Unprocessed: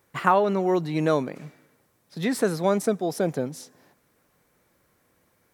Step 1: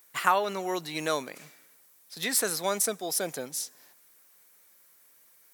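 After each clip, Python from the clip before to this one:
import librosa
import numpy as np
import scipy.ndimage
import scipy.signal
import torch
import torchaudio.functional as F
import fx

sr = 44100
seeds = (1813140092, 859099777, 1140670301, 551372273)

y = fx.tilt_eq(x, sr, slope=4.5)
y = y * librosa.db_to_amplitude(-3.5)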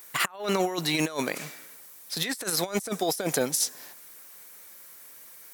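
y = fx.over_compress(x, sr, threshold_db=-34.0, ratio=-0.5)
y = y * librosa.db_to_amplitude(6.5)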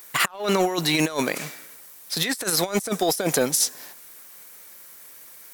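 y = fx.leveller(x, sr, passes=1)
y = y * librosa.db_to_amplitude(1.5)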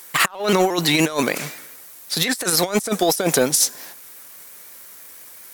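y = fx.vibrato_shape(x, sr, shape='saw_up', rate_hz=5.7, depth_cents=100.0)
y = y * librosa.db_to_amplitude(4.0)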